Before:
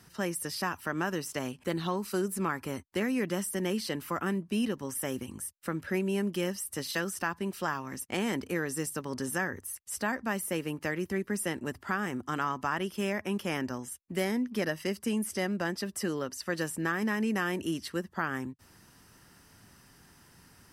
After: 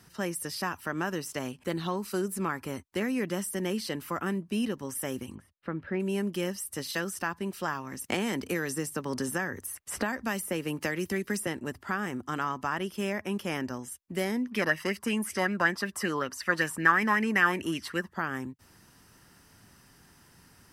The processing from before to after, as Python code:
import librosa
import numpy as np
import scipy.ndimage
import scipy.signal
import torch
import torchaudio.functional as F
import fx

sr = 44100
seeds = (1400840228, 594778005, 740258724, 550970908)

y = fx.air_absorb(x, sr, metres=360.0, at=(5.34, 5.99), fade=0.02)
y = fx.band_squash(y, sr, depth_pct=100, at=(8.04, 11.47))
y = fx.bell_lfo(y, sr, hz=5.3, low_hz=960.0, high_hz=2400.0, db=16, at=(14.47, 18.13))